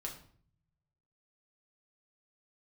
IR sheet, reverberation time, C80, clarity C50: 0.55 s, 12.5 dB, 8.5 dB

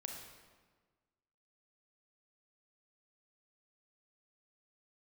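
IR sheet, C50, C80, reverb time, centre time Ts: 3.0 dB, 5.0 dB, 1.4 s, 52 ms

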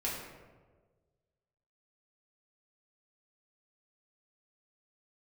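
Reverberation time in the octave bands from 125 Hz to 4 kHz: 1.8, 1.5, 1.6, 1.2, 1.0, 0.70 seconds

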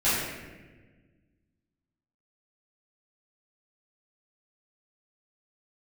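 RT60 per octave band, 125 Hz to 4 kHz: 2.2, 2.1, 1.6, 1.1, 1.3, 0.90 seconds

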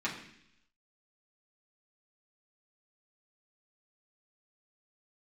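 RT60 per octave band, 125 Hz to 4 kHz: 0.90, 0.90, 0.75, 0.70, 0.90, 0.95 seconds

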